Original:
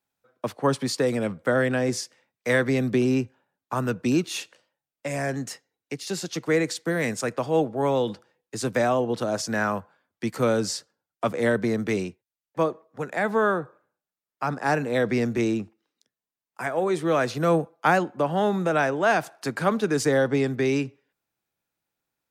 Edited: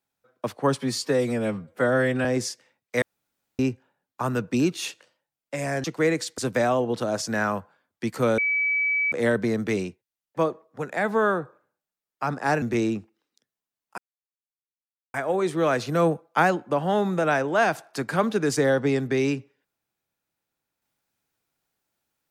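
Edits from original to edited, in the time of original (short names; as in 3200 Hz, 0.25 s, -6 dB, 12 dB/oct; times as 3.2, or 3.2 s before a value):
0.81–1.77 stretch 1.5×
2.54–3.11 room tone
5.36–6.33 cut
6.87–8.58 cut
10.58–11.32 bleep 2290 Hz -20.5 dBFS
14.82–15.26 cut
16.62 insert silence 1.16 s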